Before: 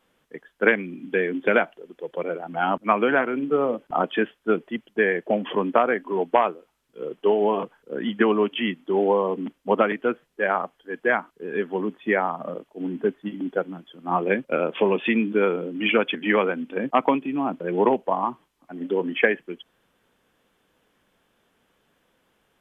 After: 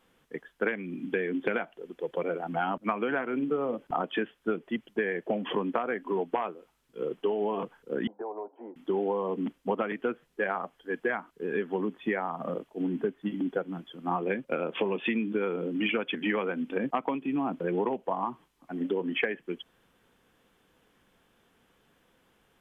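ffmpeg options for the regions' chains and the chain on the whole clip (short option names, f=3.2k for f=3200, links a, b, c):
-filter_complex "[0:a]asettb=1/sr,asplit=3[a][b][c];[a]atrim=end=8.074[d];[b]atrim=start=8.07:end=8.76,asetpts=PTS-STARTPTS,afade=t=in:d=0.004:c=qsin,afade=t=out:st=0.686:d=0.004:c=qsin,asuperpass=centerf=600:order=8:qfactor=0.95,aecho=1:1:1.3:0.65,atrim=end_sample=30429,acompressor=threshold=-35dB:ratio=4:attack=3.2:release=140:knee=1:detection=peak[e];[c]atrim=start=8.756[f];[d][e]acrossfade=d=0.004:c1=hsin:c2=qsin[g];[g][f]acrossfade=d=0.004:c1=qsin:c2=hsin,lowshelf=f=190:g=3.5,bandreject=f=600:w=15,acompressor=threshold=-26dB:ratio=6"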